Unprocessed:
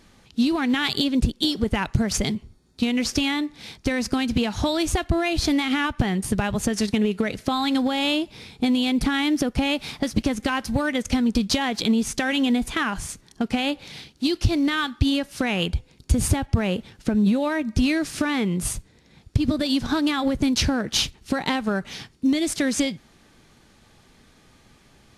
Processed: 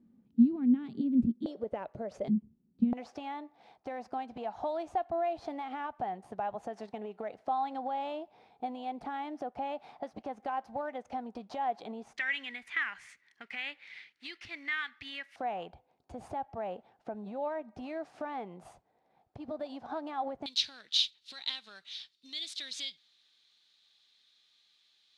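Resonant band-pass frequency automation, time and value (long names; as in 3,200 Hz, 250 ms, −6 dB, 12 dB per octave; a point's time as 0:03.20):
resonant band-pass, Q 5.3
230 Hz
from 0:01.46 580 Hz
from 0:02.28 210 Hz
from 0:02.93 740 Hz
from 0:12.17 2,000 Hz
from 0:15.36 740 Hz
from 0:20.46 3,800 Hz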